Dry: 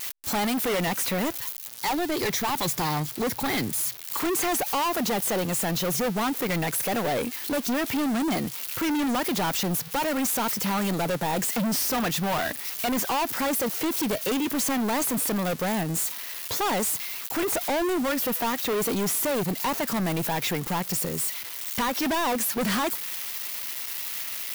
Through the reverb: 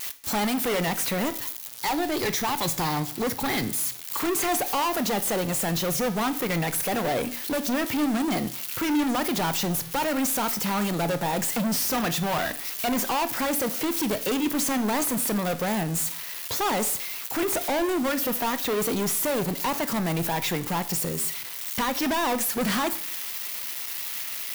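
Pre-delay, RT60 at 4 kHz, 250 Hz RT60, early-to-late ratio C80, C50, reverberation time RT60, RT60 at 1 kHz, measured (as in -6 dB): 21 ms, 0.55 s, 0.60 s, 18.5 dB, 15.5 dB, 0.60 s, 0.60 s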